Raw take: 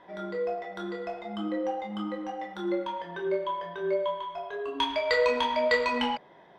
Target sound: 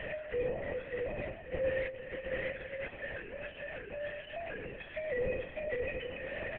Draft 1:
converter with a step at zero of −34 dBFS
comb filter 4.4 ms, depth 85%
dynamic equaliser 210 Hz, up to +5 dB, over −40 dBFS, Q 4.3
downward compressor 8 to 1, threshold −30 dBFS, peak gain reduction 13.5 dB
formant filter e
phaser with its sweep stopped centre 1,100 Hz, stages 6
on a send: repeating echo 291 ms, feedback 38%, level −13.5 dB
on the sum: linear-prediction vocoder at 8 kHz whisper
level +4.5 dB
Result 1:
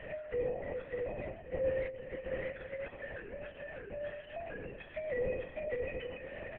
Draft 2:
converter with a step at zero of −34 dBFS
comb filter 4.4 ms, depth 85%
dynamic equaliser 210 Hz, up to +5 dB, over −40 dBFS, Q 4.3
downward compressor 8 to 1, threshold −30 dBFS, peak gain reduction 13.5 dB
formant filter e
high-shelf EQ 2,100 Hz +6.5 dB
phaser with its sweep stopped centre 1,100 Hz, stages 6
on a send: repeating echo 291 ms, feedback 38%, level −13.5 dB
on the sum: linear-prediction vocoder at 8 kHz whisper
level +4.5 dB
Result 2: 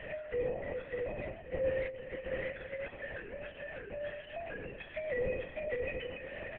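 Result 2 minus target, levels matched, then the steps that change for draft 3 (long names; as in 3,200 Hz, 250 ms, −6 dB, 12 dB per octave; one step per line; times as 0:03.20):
converter with a step at zero: distortion −5 dB
change: converter with a step at zero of −27 dBFS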